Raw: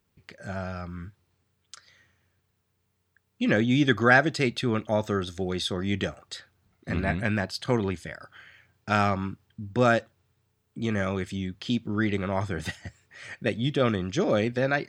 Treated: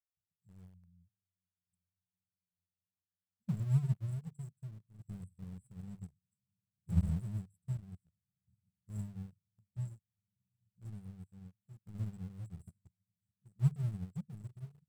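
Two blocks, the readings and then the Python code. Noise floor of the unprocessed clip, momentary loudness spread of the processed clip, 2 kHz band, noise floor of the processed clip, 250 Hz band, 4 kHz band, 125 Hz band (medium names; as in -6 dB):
-74 dBFS, 21 LU, under -40 dB, under -85 dBFS, -17.0 dB, under -30 dB, -6.0 dB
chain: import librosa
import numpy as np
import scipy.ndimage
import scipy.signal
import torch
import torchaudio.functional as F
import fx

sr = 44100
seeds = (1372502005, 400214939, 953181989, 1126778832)

p1 = fx.brickwall_bandstop(x, sr, low_hz=200.0, high_hz=7400.0)
p2 = fx.peak_eq(p1, sr, hz=320.0, db=-4.0, octaves=0.27)
p3 = fx.echo_diffused(p2, sr, ms=715, feedback_pct=72, wet_db=-15.5)
p4 = np.where(np.abs(p3) >= 10.0 ** (-32.5 / 20.0), p3, 0.0)
p5 = p3 + F.gain(torch.from_numpy(p4), -8.0).numpy()
p6 = fx.low_shelf(p5, sr, hz=60.0, db=9.0)
p7 = fx.hum_notches(p6, sr, base_hz=50, count=3)
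p8 = fx.tremolo_shape(p7, sr, shape='saw_down', hz=0.59, depth_pct=50)
y = fx.upward_expand(p8, sr, threshold_db=-49.0, expansion=2.5)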